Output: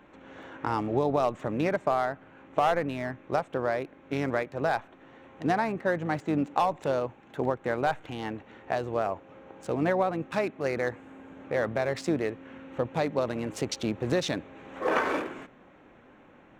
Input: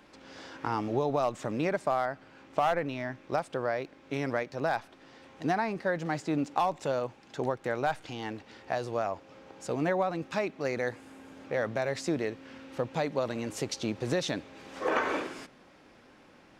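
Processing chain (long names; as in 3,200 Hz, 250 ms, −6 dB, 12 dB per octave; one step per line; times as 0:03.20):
adaptive Wiener filter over 9 samples
pitch-shifted copies added −7 semitones −16 dB
level +2.5 dB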